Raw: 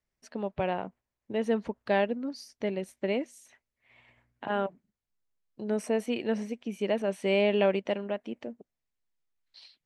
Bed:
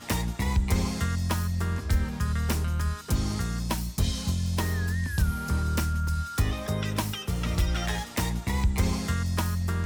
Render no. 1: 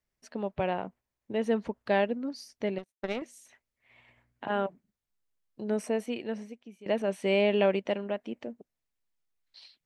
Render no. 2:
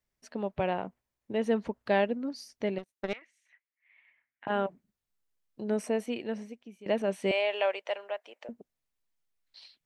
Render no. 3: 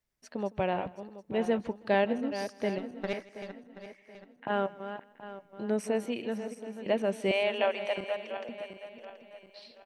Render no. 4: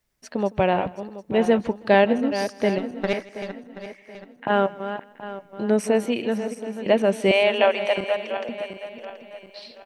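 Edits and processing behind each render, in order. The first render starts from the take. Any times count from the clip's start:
2.78–3.22 s: power-law waveshaper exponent 2; 5.73–6.86 s: fade out, to -20.5 dB
3.13–4.47 s: band-pass filter 2 kHz, Q 3.1; 7.31–8.49 s: high-pass 570 Hz 24 dB/octave
backward echo that repeats 364 ms, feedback 59%, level -10 dB; feedback delay 160 ms, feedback 32%, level -21.5 dB
trim +9.5 dB

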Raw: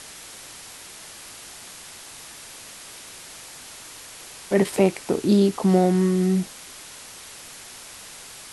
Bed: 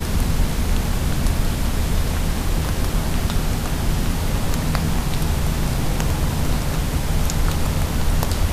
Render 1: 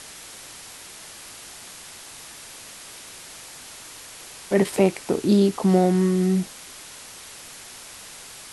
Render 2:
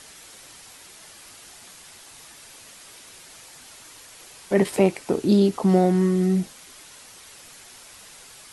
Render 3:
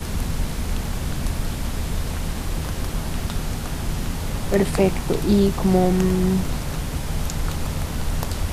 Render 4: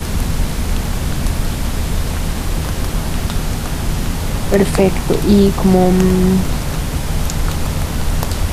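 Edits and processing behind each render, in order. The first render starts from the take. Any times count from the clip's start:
no audible change
noise reduction 6 dB, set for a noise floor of -42 dBFS
add bed -5 dB
trim +7 dB; peak limiter -1 dBFS, peak gain reduction 2 dB

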